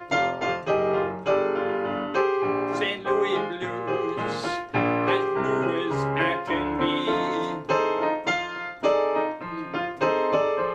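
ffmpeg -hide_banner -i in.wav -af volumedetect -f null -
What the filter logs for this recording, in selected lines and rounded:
mean_volume: -25.0 dB
max_volume: -8.8 dB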